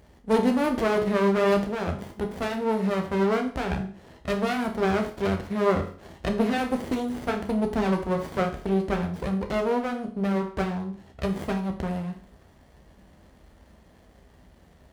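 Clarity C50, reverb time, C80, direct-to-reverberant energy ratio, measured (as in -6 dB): 10.0 dB, 0.45 s, 14.0 dB, 3.5 dB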